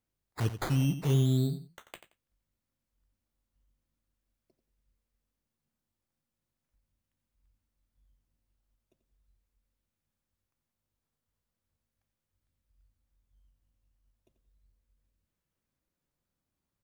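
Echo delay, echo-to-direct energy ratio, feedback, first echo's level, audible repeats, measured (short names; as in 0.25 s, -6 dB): 88 ms, -11.5 dB, 19%, -11.5 dB, 2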